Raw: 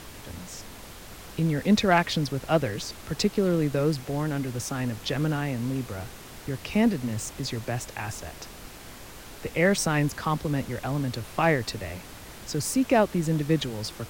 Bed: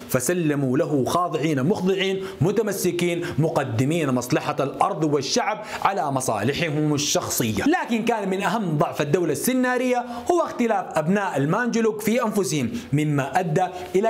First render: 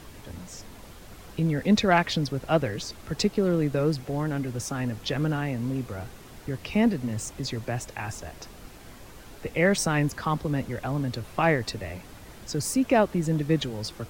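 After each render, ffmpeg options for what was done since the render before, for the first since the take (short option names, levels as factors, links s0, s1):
-af "afftdn=nr=6:nf=-44"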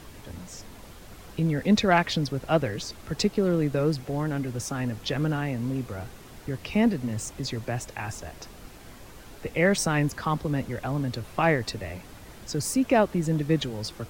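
-af anull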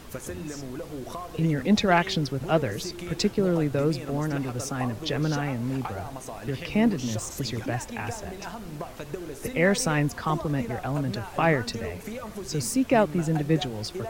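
-filter_complex "[1:a]volume=0.168[s0];[0:a][s0]amix=inputs=2:normalize=0"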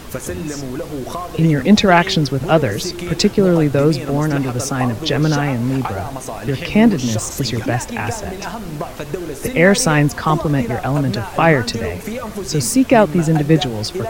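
-af "volume=3.35,alimiter=limit=0.891:level=0:latency=1"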